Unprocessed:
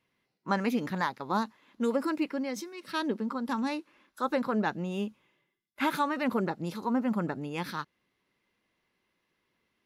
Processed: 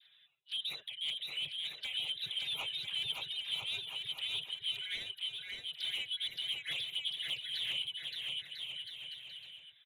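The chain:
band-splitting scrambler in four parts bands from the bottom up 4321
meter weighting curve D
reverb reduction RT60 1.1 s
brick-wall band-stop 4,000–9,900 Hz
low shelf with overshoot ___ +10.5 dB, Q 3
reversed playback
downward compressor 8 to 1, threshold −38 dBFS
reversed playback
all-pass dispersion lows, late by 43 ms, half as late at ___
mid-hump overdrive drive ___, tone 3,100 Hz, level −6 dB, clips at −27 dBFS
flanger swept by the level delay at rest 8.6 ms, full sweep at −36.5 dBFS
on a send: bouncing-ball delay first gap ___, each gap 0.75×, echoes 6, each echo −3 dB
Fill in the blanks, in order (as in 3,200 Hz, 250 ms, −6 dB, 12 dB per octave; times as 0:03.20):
190 Hz, 980 Hz, 18 dB, 570 ms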